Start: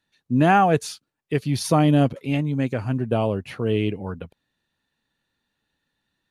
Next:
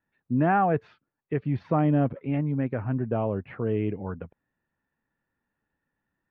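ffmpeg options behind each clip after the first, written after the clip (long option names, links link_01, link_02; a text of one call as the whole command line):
ffmpeg -i in.wav -filter_complex "[0:a]lowpass=frequency=2000:width=0.5412,lowpass=frequency=2000:width=1.3066,asplit=2[link_01][link_02];[link_02]alimiter=limit=-16.5dB:level=0:latency=1:release=34,volume=-0.5dB[link_03];[link_01][link_03]amix=inputs=2:normalize=0,volume=-8.5dB" out.wav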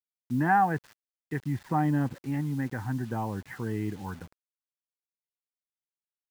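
ffmpeg -i in.wav -af "superequalizer=7b=0.447:8b=0.355:9b=1.78:11b=2.24:12b=0.631,acrusher=bits=7:mix=0:aa=0.000001,volume=-3.5dB" out.wav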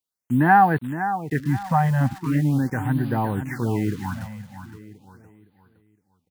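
ffmpeg -i in.wav -filter_complex "[0:a]asplit=2[link_01][link_02];[link_02]aecho=0:1:514|1028|1542|2056:0.299|0.104|0.0366|0.0128[link_03];[link_01][link_03]amix=inputs=2:normalize=0,afftfilt=real='re*(1-between(b*sr/1024,330*pow(7100/330,0.5+0.5*sin(2*PI*0.4*pts/sr))/1.41,330*pow(7100/330,0.5+0.5*sin(2*PI*0.4*pts/sr))*1.41))':imag='im*(1-between(b*sr/1024,330*pow(7100/330,0.5+0.5*sin(2*PI*0.4*pts/sr))/1.41,330*pow(7100/330,0.5+0.5*sin(2*PI*0.4*pts/sr))*1.41))':win_size=1024:overlap=0.75,volume=8dB" out.wav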